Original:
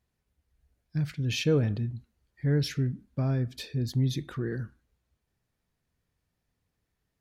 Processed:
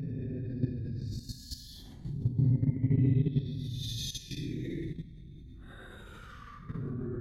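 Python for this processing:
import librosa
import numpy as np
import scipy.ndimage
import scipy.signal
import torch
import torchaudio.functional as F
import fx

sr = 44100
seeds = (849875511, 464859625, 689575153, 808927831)

y = fx.add_hum(x, sr, base_hz=50, snr_db=11)
y = fx.paulstretch(y, sr, seeds[0], factor=11.0, window_s=0.05, from_s=3.76)
y = fx.level_steps(y, sr, step_db=12)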